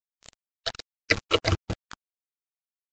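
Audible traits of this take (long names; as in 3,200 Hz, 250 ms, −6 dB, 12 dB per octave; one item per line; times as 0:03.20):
phaser sweep stages 8, 1.3 Hz, lowest notch 220–2,200 Hz
a quantiser's noise floor 6 bits, dither none
Ogg Vorbis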